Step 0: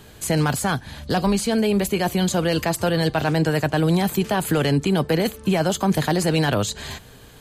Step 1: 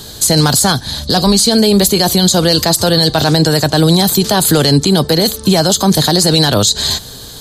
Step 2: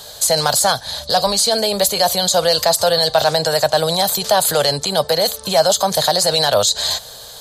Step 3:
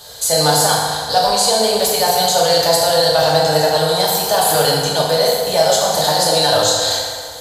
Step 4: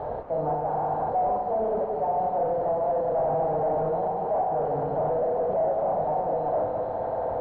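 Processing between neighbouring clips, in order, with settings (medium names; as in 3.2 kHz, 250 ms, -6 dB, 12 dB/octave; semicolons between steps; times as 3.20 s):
resonant high shelf 3.2 kHz +7.5 dB, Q 3; loudness maximiser +12 dB; trim -1 dB
resonant low shelf 430 Hz -10 dB, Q 3; trim -4 dB
FDN reverb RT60 2 s, low-frequency decay 0.8×, high-frequency decay 0.65×, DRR -6 dB; trim -5 dB
one-bit comparator; four-pole ladder low-pass 890 Hz, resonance 45%; trim -3 dB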